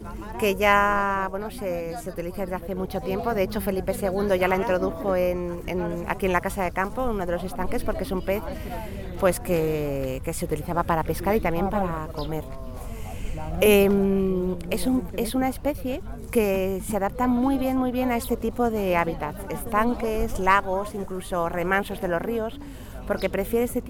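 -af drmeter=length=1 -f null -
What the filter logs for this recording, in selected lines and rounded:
Channel 1: DR: 14.1
Overall DR: 14.1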